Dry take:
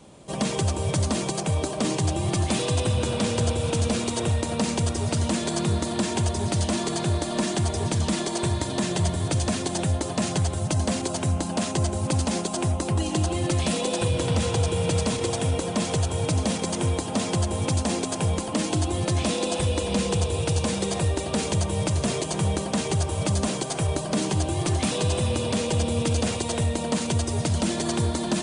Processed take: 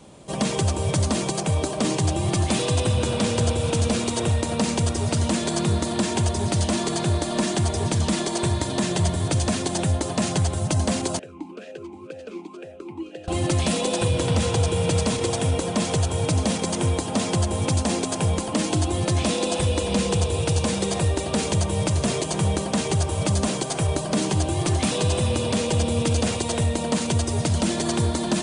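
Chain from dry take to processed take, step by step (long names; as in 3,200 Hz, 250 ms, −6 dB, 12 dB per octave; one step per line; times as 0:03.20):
0:11.19–0:13.28: formant filter swept between two vowels e-u 2 Hz
level +2 dB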